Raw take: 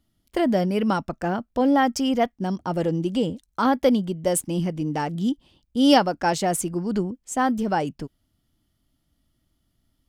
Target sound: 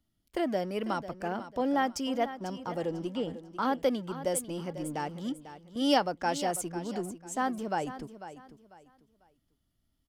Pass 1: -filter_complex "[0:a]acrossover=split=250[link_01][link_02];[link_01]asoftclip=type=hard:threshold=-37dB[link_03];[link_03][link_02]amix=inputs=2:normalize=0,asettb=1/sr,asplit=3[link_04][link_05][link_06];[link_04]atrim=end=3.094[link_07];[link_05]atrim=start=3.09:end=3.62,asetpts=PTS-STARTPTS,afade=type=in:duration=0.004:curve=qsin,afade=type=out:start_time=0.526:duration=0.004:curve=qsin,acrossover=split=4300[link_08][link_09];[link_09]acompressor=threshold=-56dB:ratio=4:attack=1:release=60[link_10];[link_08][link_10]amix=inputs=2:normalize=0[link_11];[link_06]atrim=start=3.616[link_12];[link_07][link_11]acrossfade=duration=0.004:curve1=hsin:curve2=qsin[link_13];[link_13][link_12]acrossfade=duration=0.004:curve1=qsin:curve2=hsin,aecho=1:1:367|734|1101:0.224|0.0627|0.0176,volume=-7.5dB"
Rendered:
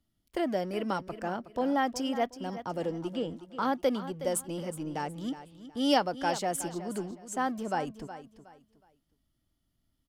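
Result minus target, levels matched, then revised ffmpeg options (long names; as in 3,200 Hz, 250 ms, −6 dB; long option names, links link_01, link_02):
echo 129 ms early
-filter_complex "[0:a]acrossover=split=250[link_01][link_02];[link_01]asoftclip=type=hard:threshold=-37dB[link_03];[link_03][link_02]amix=inputs=2:normalize=0,asettb=1/sr,asplit=3[link_04][link_05][link_06];[link_04]atrim=end=3.094[link_07];[link_05]atrim=start=3.09:end=3.62,asetpts=PTS-STARTPTS,afade=type=in:duration=0.004:curve=qsin,afade=type=out:start_time=0.526:duration=0.004:curve=qsin,acrossover=split=4300[link_08][link_09];[link_09]acompressor=threshold=-56dB:ratio=4:attack=1:release=60[link_10];[link_08][link_10]amix=inputs=2:normalize=0[link_11];[link_06]atrim=start=3.616[link_12];[link_07][link_11]acrossfade=duration=0.004:curve1=hsin:curve2=qsin[link_13];[link_13][link_12]acrossfade=duration=0.004:curve1=qsin:curve2=hsin,aecho=1:1:496|992|1488:0.224|0.0627|0.0176,volume=-7.5dB"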